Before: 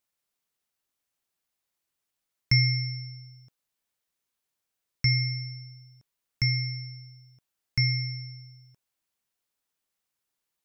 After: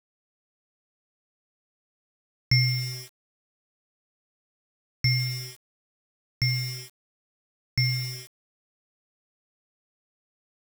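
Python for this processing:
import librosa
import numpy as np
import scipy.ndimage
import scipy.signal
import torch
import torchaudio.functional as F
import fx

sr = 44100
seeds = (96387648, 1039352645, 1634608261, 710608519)

y = np.where(np.abs(x) >= 10.0 ** (-34.0 / 20.0), x, 0.0)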